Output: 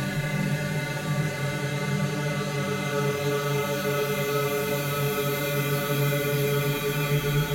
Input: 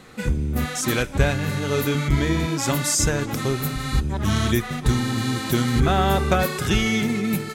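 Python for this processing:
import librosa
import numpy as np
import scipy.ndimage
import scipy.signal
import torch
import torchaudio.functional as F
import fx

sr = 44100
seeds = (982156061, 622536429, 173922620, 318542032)

y = x + 0.79 * np.pad(x, (int(5.4 * sr / 1000.0), 0))[:len(x)]
y = fx.paulstretch(y, sr, seeds[0], factor=16.0, window_s=0.5, from_s=1.48)
y = y * 10.0 ** (-4.0 / 20.0)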